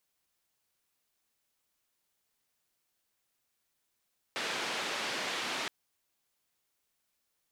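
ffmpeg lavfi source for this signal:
-f lavfi -i "anoisesrc=c=white:d=1.32:r=44100:seed=1,highpass=f=240,lowpass=f=3500,volume=-22.8dB"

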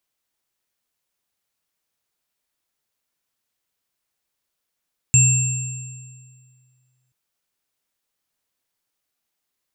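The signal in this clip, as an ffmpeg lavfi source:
-f lavfi -i "aevalsrc='0.224*pow(10,-3*t/2.08)*sin(2*PI*127*t)+0.0708*pow(10,-3*t/1.68)*sin(2*PI*2670*t)+0.282*pow(10,-3*t/1.7)*sin(2*PI*7410*t)':d=1.98:s=44100"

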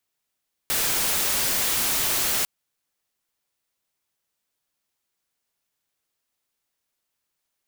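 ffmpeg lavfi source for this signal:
-f lavfi -i "anoisesrc=c=white:a=0.116:d=1.75:r=44100:seed=1"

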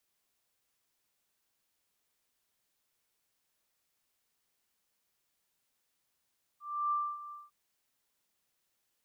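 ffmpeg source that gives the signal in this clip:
-f lavfi -i "aevalsrc='0.0422*sin(2*PI*1180*t)':d=0.905:s=44100,afade=t=in:d=0.313,afade=t=out:st=0.313:d=0.263:silence=0.178,afade=t=out:st=0.72:d=0.185"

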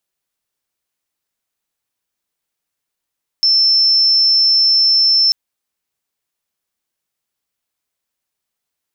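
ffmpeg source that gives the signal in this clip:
-f lavfi -i "sine=f=5330:d=1.89:r=44100,volume=9.06dB"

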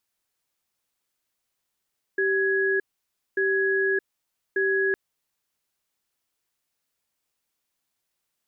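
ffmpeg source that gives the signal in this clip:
-f lavfi -i "aevalsrc='0.0708*(sin(2*PI*388*t)+sin(2*PI*1670*t))*clip(min(mod(t,1.19),0.62-mod(t,1.19))/0.005,0,1)':d=2.76:s=44100"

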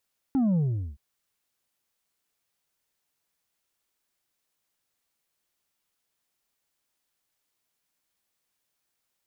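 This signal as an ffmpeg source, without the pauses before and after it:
-f lavfi -i "aevalsrc='0.0891*clip((0.62-t)/0.41,0,1)*tanh(1.58*sin(2*PI*280*0.62/log(65/280)*(exp(log(65/280)*t/0.62)-1)))/tanh(1.58)':d=0.62:s=44100"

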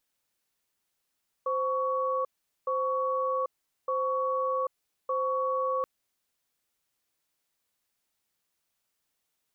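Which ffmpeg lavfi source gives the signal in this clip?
-f lavfi -i "aevalsrc='0.0376*(sin(2*PI*520*t)+sin(2*PI*1120*t))*clip(min(mod(t,1.21),0.79-mod(t,1.21))/0.005,0,1)':d=4.38:s=44100"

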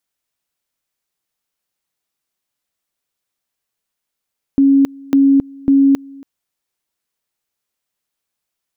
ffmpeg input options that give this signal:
-f lavfi -i "aevalsrc='pow(10,(-7-25.5*gte(mod(t,0.55),0.27))/20)*sin(2*PI*275*t)':d=1.65:s=44100"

